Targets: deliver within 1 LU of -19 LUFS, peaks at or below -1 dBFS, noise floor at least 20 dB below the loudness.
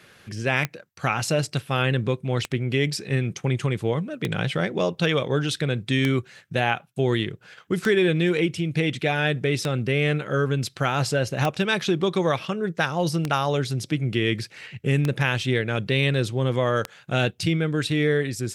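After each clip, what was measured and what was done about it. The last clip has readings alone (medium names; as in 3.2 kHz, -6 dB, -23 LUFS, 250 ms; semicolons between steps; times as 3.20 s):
clicks found 10; loudness -24.0 LUFS; peak level -7.0 dBFS; loudness target -19.0 LUFS
-> de-click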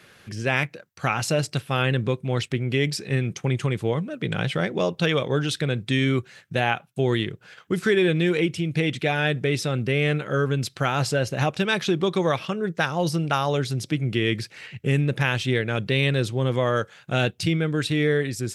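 clicks found 0; loudness -24.0 LUFS; peak level -7.0 dBFS; loudness target -19.0 LUFS
-> trim +5 dB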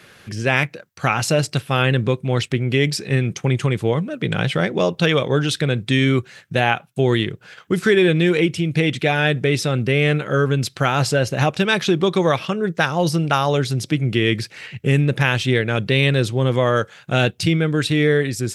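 loudness -19.0 LUFS; peak level -2.0 dBFS; noise floor -49 dBFS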